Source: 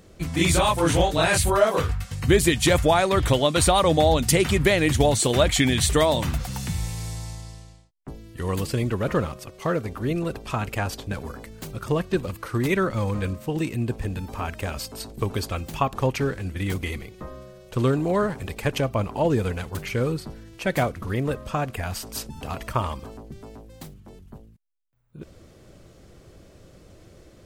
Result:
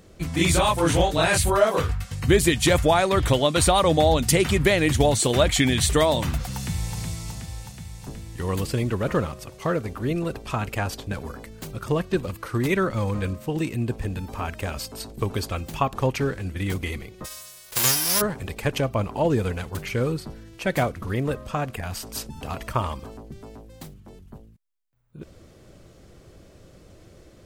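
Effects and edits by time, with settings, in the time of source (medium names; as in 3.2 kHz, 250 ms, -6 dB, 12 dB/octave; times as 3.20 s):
6.53–6.97 s: echo throw 370 ms, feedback 75%, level -6 dB
17.24–18.20 s: formants flattened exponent 0.1
21.42–22.03 s: transformer saturation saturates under 400 Hz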